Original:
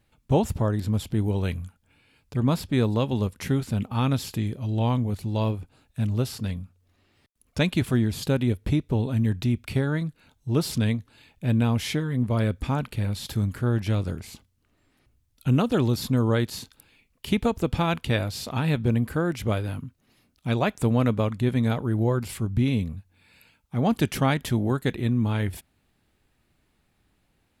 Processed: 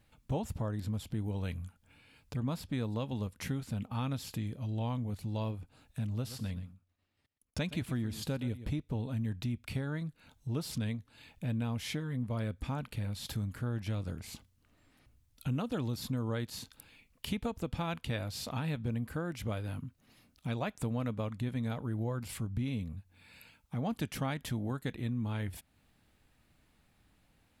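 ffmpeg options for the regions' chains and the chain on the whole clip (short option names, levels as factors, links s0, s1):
-filter_complex "[0:a]asettb=1/sr,asplit=3[s0][s1][s2];[s0]atrim=end=6.124[s3];[s1]atrim=start=6.12:end=8.8,asetpts=PTS-STARTPTS,afade=t=in:d=0.004:c=qsin,afade=t=out:st=2.676:d=0.004:c=qsin,agate=range=0.0224:threshold=0.00178:ratio=3:release=100:detection=peak,aecho=1:1:121:0.168,atrim=end_sample=118188[s4];[s2]atrim=start=8.796[s5];[s3][s4]acrossfade=d=0.004:c1=hsin:c2=qsin[s6];[s6][s5]acrossfade=d=0.004:c1=qsin:c2=hsin,equalizer=f=380:w=7.3:g=-8.5,acompressor=threshold=0.00891:ratio=2"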